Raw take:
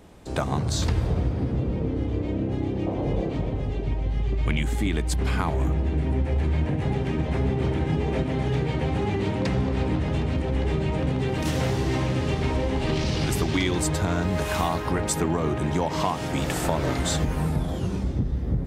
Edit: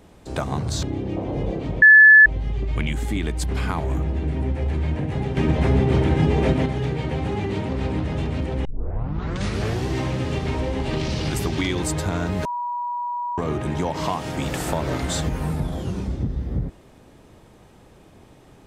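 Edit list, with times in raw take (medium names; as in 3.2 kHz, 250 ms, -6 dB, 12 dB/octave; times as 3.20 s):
0.83–2.53 s: delete
3.52–3.96 s: bleep 1.73 kHz -6 dBFS
7.07–8.36 s: gain +6 dB
9.39–9.65 s: delete
10.61 s: tape start 1.22 s
14.41–15.34 s: bleep 967 Hz -24 dBFS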